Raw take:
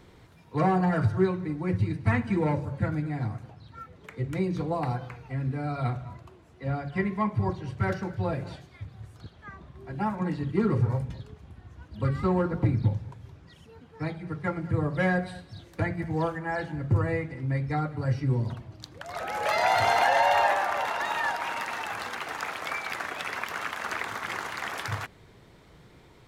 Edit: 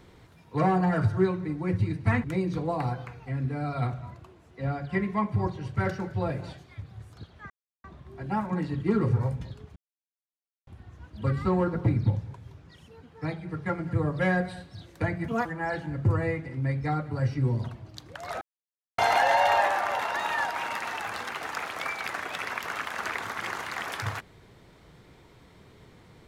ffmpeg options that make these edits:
-filter_complex "[0:a]asplit=8[s0][s1][s2][s3][s4][s5][s6][s7];[s0]atrim=end=2.242[s8];[s1]atrim=start=4.268:end=9.53,asetpts=PTS-STARTPTS,afade=t=out:st=5.258:d=0.004:c=hsin,apad=pad_dur=0.34[s9];[s2]atrim=start=9.53:end=11.45,asetpts=PTS-STARTPTS,afade=t=in:d=0.004:c=hsin,afade=t=out:st=1.916:d=0.004:c=hsin,apad=pad_dur=0.91[s10];[s3]atrim=start=11.45:end=16.064,asetpts=PTS-STARTPTS,afade=t=in:d=0.004:c=hsin[s11];[s4]atrim=start=16.06:end=16.31,asetpts=PTS-STARTPTS,asetrate=63945,aresample=44100,atrim=end_sample=7603,asetpts=PTS-STARTPTS[s12];[s5]atrim=start=16.306:end=19.27,asetpts=PTS-STARTPTS,afade=t=out:st=2.96:d=0.004:c=hsin[s13];[s6]atrim=start=19.27:end=19.84,asetpts=PTS-STARTPTS,volume=0[s14];[s7]atrim=start=19.84,asetpts=PTS-STARTPTS,afade=t=in:d=0.004:c=hsin[s15];[s9][s10][s11]concat=n=3:v=0:a=1[s16];[s8][s16]acrossfade=d=0.004:c1=hsin:c2=hsin[s17];[s17][s12]acrossfade=d=0.004:c1=hsin:c2=hsin[s18];[s13][s14][s15]concat=n=3:v=0:a=1[s19];[s18][s19]acrossfade=d=0.004:c1=hsin:c2=hsin"

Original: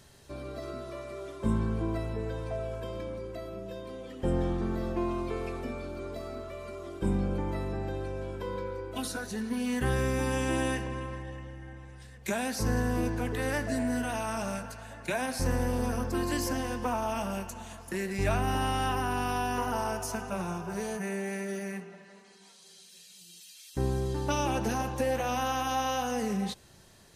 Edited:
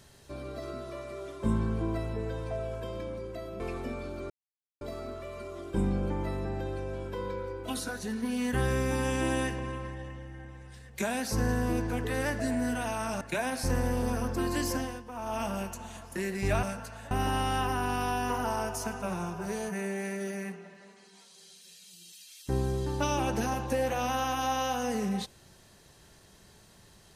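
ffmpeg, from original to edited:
-filter_complex "[0:a]asplit=8[s0][s1][s2][s3][s4][s5][s6][s7];[s0]atrim=end=3.602[s8];[s1]atrim=start=5.388:end=6.09,asetpts=PTS-STARTPTS,afade=t=out:st=0.698:d=0.004:c=hsin,apad=pad_dur=0.51[s9];[s2]atrim=start=6.09:end=14.492,asetpts=PTS-STARTPTS,afade=t=in:d=0.004:c=hsin[s10];[s3]atrim=start=14.968:end=16.8,asetpts=PTS-STARTPTS,afade=t=out:st=1.552:d=0.28:silence=0.237137[s11];[s4]atrim=start=16.8:end=16.88,asetpts=PTS-STARTPTS,volume=0.237[s12];[s5]atrim=start=16.88:end=18.392,asetpts=PTS-STARTPTS,afade=t=in:d=0.28:silence=0.237137[s13];[s6]atrim=start=14.488:end=14.972[s14];[s7]atrim=start=18.388[s15];[s9][s10]concat=n=2:v=0:a=1[s16];[s8][s16]acrossfade=d=0.004:c1=hsin:c2=hsin[s17];[s11][s12][s13]concat=n=3:v=0:a=1[s18];[s17][s18]acrossfade=d=0.004:c1=hsin:c2=hsin[s19];[s19][s14]acrossfade=d=0.004:c1=hsin:c2=hsin[s20];[s20][s15]acrossfade=d=0.004:c1=hsin:c2=hsin"

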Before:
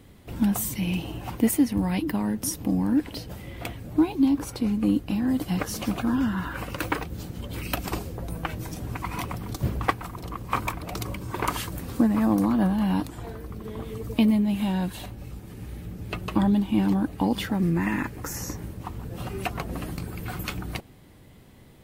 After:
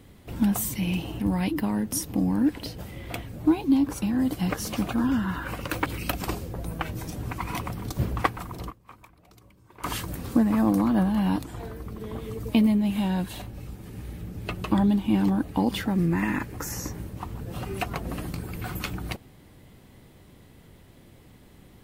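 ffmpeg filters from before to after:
-filter_complex "[0:a]asplit=6[s0][s1][s2][s3][s4][s5];[s0]atrim=end=1.202[s6];[s1]atrim=start=1.708:end=4.532[s7];[s2]atrim=start=5.108:end=6.952[s8];[s3]atrim=start=7.498:end=10.53,asetpts=PTS-STARTPTS,afade=t=out:st=2.832:d=0.2:c=exp:silence=0.0749894[s9];[s4]atrim=start=10.53:end=11.3,asetpts=PTS-STARTPTS,volume=0.075[s10];[s5]atrim=start=11.3,asetpts=PTS-STARTPTS,afade=t=in:d=0.2:c=exp:silence=0.0749894[s11];[s6][s7]acrossfade=d=0.004:c1=hsin:c2=hsin[s12];[s12][s8]acrossfade=d=0.004:c1=hsin:c2=hsin[s13];[s9][s10][s11]concat=n=3:v=0:a=1[s14];[s13][s14]acrossfade=d=0.004:c1=hsin:c2=hsin"

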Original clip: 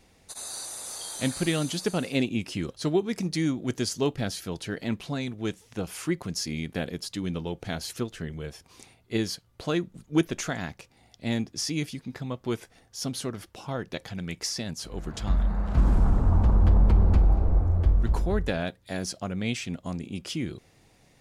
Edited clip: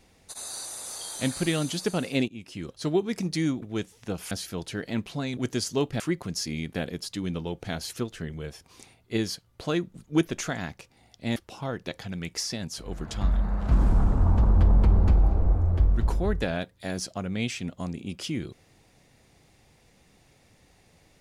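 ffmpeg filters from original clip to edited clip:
-filter_complex "[0:a]asplit=7[s0][s1][s2][s3][s4][s5][s6];[s0]atrim=end=2.28,asetpts=PTS-STARTPTS,afade=t=out:st=2.276:d=0.004:c=hsin:silence=0.125893[s7];[s1]atrim=start=2.28:end=3.622,asetpts=PTS-STARTPTS,afade=t=in:d=0.69:silence=0.125893[s8];[s2]atrim=start=5.308:end=6.002[s9];[s3]atrim=start=4.248:end=5.312[s10];[s4]atrim=start=3.618:end=4.252[s11];[s5]atrim=start=5.998:end=11.362[s12];[s6]atrim=start=13.418[s13];[s7][s8]concat=n=2:v=0:a=1[s14];[s14][s9]acrossfade=d=0.004:c1=hsin:c2=hsin[s15];[s15][s10]acrossfade=d=0.004:c1=hsin:c2=hsin[s16];[s16][s11]acrossfade=d=0.004:c1=hsin:c2=hsin[s17];[s17][s12]acrossfade=d=0.004:c1=hsin:c2=hsin[s18];[s18][s13]acrossfade=d=0.004:c1=hsin:c2=hsin"

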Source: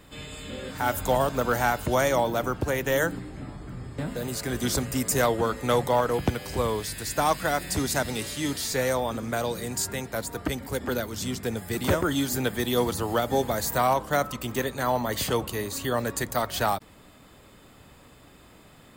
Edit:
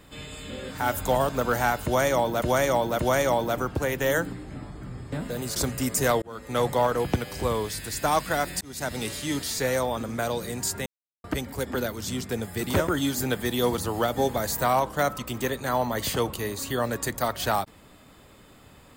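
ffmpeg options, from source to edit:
-filter_complex "[0:a]asplit=8[s0][s1][s2][s3][s4][s5][s6][s7];[s0]atrim=end=2.422[s8];[s1]atrim=start=1.848:end=2.422[s9];[s2]atrim=start=1.848:end=4.422[s10];[s3]atrim=start=4.698:end=5.36,asetpts=PTS-STARTPTS,afade=t=out:st=0.658:d=0.004:c=hsin[s11];[s4]atrim=start=5.36:end=7.75,asetpts=PTS-STARTPTS,afade=t=in:d=0.46,afade=t=out:st=2.386:d=0.004:c=hsin[s12];[s5]atrim=start=7.75:end=10,asetpts=PTS-STARTPTS,afade=t=in:d=0.4,afade=t=out:st=2.246:d=0.004:c=hsin[s13];[s6]atrim=start=10:end=10.38,asetpts=PTS-STARTPTS,volume=0[s14];[s7]atrim=start=10.38,asetpts=PTS-STARTPTS,afade=t=in:d=0.004:c=hsin[s15];[s8][s9]acrossfade=d=0.004:c1=hsin:c2=hsin[s16];[s16][s10]acrossfade=d=0.004:c1=hsin:c2=hsin[s17];[s11][s12][s13][s14][s15]concat=n=5:v=0:a=1[s18];[s17][s18]acrossfade=d=0.004:c1=hsin:c2=hsin"

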